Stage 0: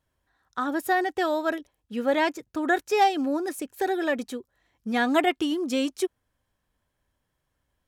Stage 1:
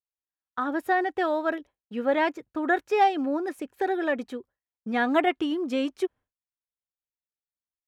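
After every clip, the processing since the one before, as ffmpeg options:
-af "agate=range=-33dB:threshold=-42dB:ratio=3:detection=peak,bass=f=250:g=-3,treble=f=4k:g=-14"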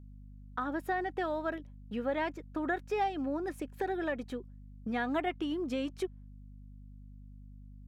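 -af "acompressor=threshold=-37dB:ratio=2,aeval=exprs='val(0)+0.00355*(sin(2*PI*50*n/s)+sin(2*PI*2*50*n/s)/2+sin(2*PI*3*50*n/s)/3+sin(2*PI*4*50*n/s)/4+sin(2*PI*5*50*n/s)/5)':c=same"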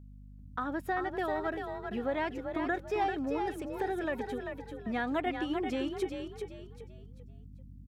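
-filter_complex "[0:a]asplit=5[a][b][c][d][e];[b]adelay=391,afreqshift=38,volume=-6dB[f];[c]adelay=782,afreqshift=76,volume=-15.6dB[g];[d]adelay=1173,afreqshift=114,volume=-25.3dB[h];[e]adelay=1564,afreqshift=152,volume=-34.9dB[i];[a][f][g][h][i]amix=inputs=5:normalize=0"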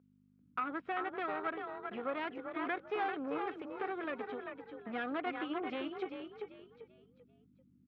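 -af "aeval=exprs='(tanh(25.1*val(0)+0.75)-tanh(0.75))/25.1':c=same,highpass=360,equalizer=f=370:t=q:w=4:g=-4,equalizer=f=610:t=q:w=4:g=-7,equalizer=f=880:t=q:w=4:g=-7,equalizer=f=1.3k:t=q:w=4:g=3,equalizer=f=1.8k:t=q:w=4:g=-6,equalizer=f=2.7k:t=q:w=4:g=-3,lowpass=f=2.9k:w=0.5412,lowpass=f=2.9k:w=1.3066,volume=5dB"

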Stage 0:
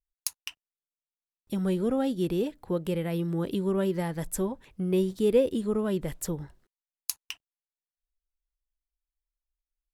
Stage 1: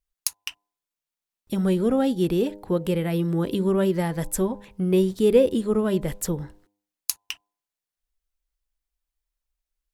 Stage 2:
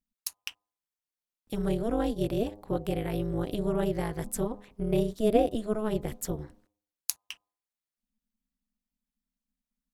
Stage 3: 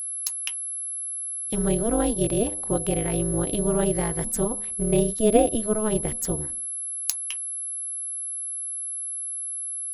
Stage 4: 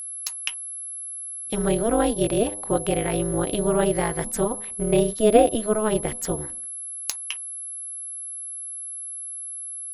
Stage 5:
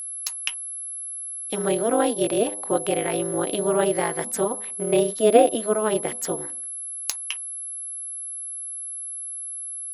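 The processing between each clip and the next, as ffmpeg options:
-af "bandreject=f=101.7:t=h:w=4,bandreject=f=203.4:t=h:w=4,bandreject=f=305.1:t=h:w=4,bandreject=f=406.8:t=h:w=4,bandreject=f=508.5:t=h:w=4,bandreject=f=610.2:t=h:w=4,bandreject=f=711.9:t=h:w=4,bandreject=f=813.6:t=h:w=4,bandreject=f=915.3:t=h:w=4,bandreject=f=1.017k:t=h:w=4,volume=5.5dB"
-af "tremolo=f=220:d=0.974,volume=-2.5dB"
-af "aeval=exprs='val(0)+0.02*sin(2*PI*11000*n/s)':c=same,volume=5dB"
-filter_complex "[0:a]asplit=2[a][b];[b]highpass=f=720:p=1,volume=7dB,asoftclip=type=tanh:threshold=-2dB[c];[a][c]amix=inputs=2:normalize=0,lowpass=f=3.1k:p=1,volume=-6dB,volume=3.5dB"
-af "highpass=250,volume=1dB"

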